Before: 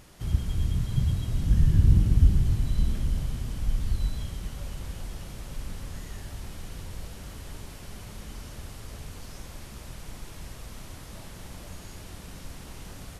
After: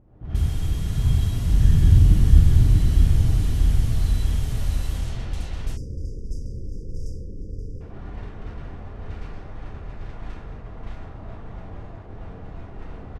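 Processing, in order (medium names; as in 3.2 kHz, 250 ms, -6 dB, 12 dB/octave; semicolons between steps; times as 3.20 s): feedback delay 641 ms, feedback 56%, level -4 dB; spectral selection erased 5.63–7.81 s, 560–4700 Hz; gated-style reverb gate 160 ms rising, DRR -7 dB; level-controlled noise filter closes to 510 Hz, open at -16 dBFS; trim -3.5 dB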